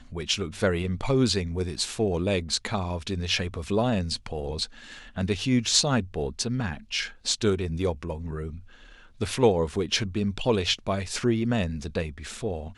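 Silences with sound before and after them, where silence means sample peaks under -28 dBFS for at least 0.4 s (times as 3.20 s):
4.64–5.18 s
8.47–9.21 s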